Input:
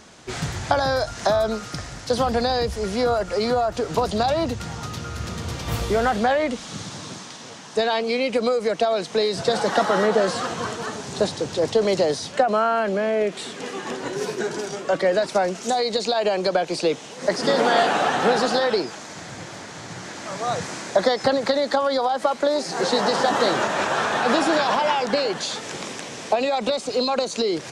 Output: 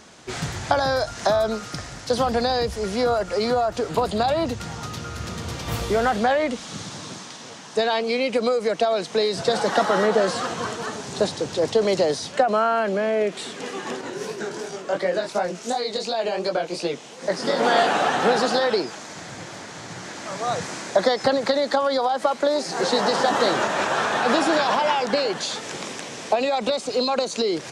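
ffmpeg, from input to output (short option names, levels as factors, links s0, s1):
-filter_complex "[0:a]asettb=1/sr,asplit=3[s0][s1][s2];[s0]atrim=end=3.894[s3];[s1]atrim=start=3.89:end=4.45,asetpts=PTS-STARTPTS,afade=t=in:d=0.004:c=qsin,afade=t=out:st=0.556:d=0.004:c=qsin,equalizer=f=5800:t=o:w=0.29:g=-10[s4];[s2]atrim=start=4.446[s5];[s3][s4]acrossfade=d=0.004:c1=hsin:c2=qsin[s6];[s6][s5]acrossfade=d=0.004:c1=qsin:c2=hsin,asettb=1/sr,asplit=3[s7][s8][s9];[s7]atrim=end=14.014[s10];[s8]atrim=start=14.01:end=17.63,asetpts=PTS-STARTPTS,afade=t=in:d=0.004:c=qsin,afade=t=out:st=3.616:d=0.004:c=qsin,flanger=delay=17:depth=6.7:speed=2.8[s11];[s9]atrim=start=17.626[s12];[s10][s11]acrossfade=d=0.004:c1=hsin:c2=qsin[s13];[s13][s12]acrossfade=d=0.004:c1=qsin:c2=hsin,lowshelf=f=88:g=-5"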